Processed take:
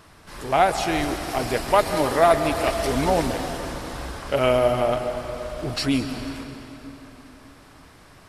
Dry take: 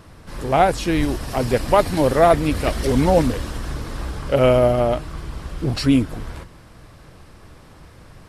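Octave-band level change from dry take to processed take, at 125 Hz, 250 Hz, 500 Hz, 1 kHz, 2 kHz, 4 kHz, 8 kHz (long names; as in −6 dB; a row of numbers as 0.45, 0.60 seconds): −8.5, −6.0, −3.5, −1.0, +0.5, +0.5, +0.5 decibels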